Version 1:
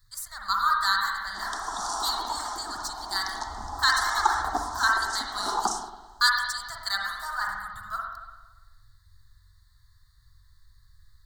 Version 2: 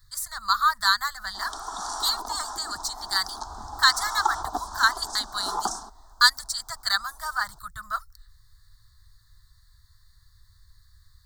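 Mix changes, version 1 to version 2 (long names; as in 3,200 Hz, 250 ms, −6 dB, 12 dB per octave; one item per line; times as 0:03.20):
speech +8.5 dB
reverb: off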